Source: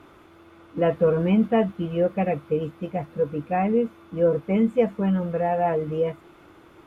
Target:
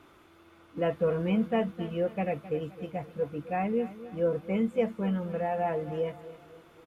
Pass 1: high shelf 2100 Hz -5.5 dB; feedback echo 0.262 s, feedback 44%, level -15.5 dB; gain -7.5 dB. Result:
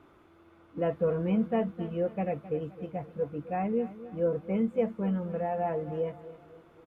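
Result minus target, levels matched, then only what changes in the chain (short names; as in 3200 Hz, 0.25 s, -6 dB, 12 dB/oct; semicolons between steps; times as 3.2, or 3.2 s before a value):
4000 Hz band -7.0 dB
change: high shelf 2100 Hz +6 dB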